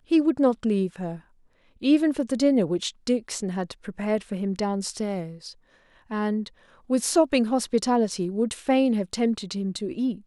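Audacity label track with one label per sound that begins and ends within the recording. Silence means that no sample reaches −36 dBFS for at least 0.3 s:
1.830000	5.520000	sound
6.110000	6.480000	sound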